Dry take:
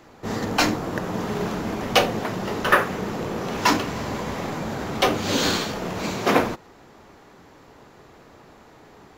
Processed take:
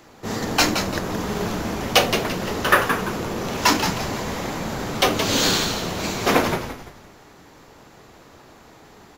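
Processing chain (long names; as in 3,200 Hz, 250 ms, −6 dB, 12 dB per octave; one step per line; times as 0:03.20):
high-shelf EQ 3,500 Hz +7 dB
on a send: echo with shifted repeats 171 ms, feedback 35%, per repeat −110 Hz, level −7 dB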